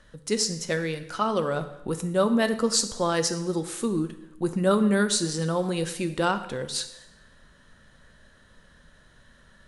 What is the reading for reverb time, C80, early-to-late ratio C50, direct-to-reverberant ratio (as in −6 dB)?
0.90 s, 14.0 dB, 12.0 dB, 9.0 dB